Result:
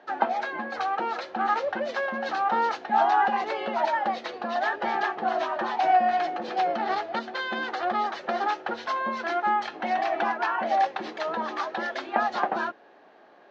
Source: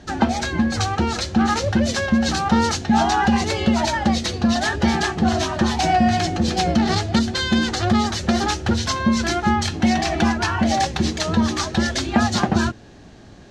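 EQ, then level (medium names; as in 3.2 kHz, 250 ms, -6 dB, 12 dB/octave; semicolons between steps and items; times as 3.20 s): high-pass 490 Hz 12 dB/octave; band-pass filter 790 Hz, Q 0.64; distance through air 170 m; 0.0 dB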